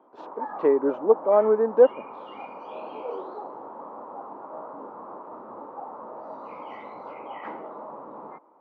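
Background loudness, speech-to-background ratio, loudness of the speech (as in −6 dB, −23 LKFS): −39.0 LKFS, 18.0 dB, −21.0 LKFS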